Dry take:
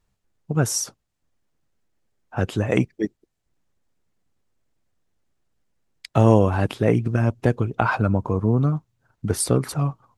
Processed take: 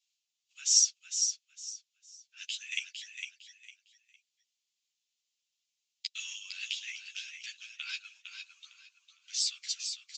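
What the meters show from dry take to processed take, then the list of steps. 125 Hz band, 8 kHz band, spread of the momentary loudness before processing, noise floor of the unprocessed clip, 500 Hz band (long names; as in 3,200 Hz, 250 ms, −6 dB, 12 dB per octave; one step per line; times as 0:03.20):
below −40 dB, can't be measured, 11 LU, −76 dBFS, below −40 dB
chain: downsampling to 16,000 Hz
Butterworth high-pass 2,700 Hz 36 dB per octave
on a send: repeating echo 456 ms, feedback 26%, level −6.5 dB
on the sum: string-ensemble chorus
level +7 dB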